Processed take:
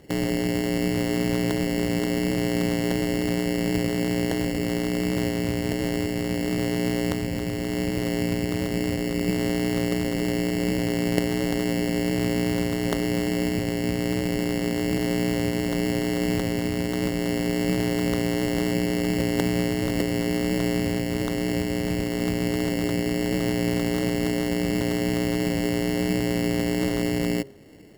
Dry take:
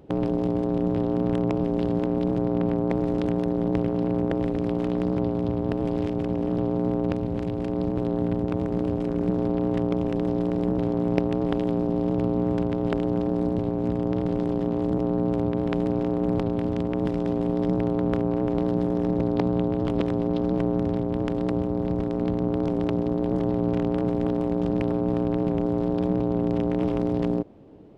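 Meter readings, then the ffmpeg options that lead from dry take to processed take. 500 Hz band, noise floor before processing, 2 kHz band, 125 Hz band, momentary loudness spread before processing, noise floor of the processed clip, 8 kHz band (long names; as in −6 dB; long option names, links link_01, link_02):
−1.0 dB, −27 dBFS, +13.5 dB, 0.0 dB, 2 LU, −28 dBFS, can't be measured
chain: -af "acrusher=samples=18:mix=1:aa=0.000001,bandreject=frequency=135.7:width_type=h:width=4,bandreject=frequency=271.4:width_type=h:width=4,bandreject=frequency=407.1:width_type=h:width=4,bandreject=frequency=542.8:width_type=h:width=4,bandreject=frequency=678.5:width_type=h:width=4,bandreject=frequency=814.2:width_type=h:width=4,bandreject=frequency=949.9:width_type=h:width=4,bandreject=frequency=1085.6:width_type=h:width=4,bandreject=frequency=1221.3:width_type=h:width=4,bandreject=frequency=1357:width_type=h:width=4"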